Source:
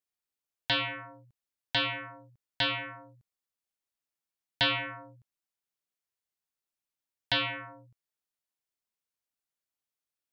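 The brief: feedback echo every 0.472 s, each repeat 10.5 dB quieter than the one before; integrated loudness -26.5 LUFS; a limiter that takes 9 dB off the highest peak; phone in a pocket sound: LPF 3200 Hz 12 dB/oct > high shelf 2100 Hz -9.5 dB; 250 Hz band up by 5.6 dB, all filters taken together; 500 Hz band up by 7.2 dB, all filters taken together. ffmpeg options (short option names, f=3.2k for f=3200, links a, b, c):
-af "equalizer=f=250:t=o:g=4,equalizer=f=500:t=o:g=8.5,alimiter=limit=-24dB:level=0:latency=1,lowpass=3.2k,highshelf=f=2.1k:g=-9.5,aecho=1:1:472|944|1416:0.299|0.0896|0.0269,volume=12.5dB"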